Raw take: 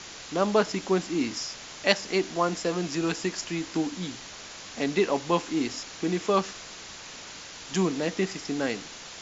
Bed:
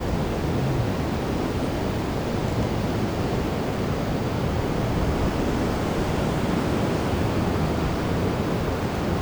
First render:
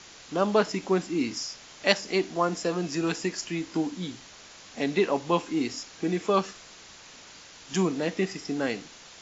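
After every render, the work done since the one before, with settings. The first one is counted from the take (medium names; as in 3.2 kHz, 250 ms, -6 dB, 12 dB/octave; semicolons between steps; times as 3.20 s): noise print and reduce 6 dB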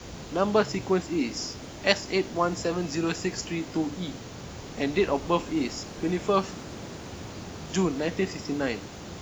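add bed -16.5 dB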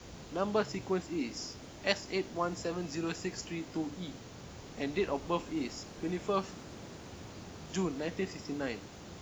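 trim -8 dB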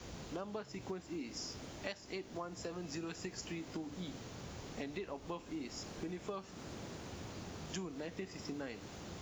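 compression 12:1, threshold -39 dBFS, peak gain reduction 16.5 dB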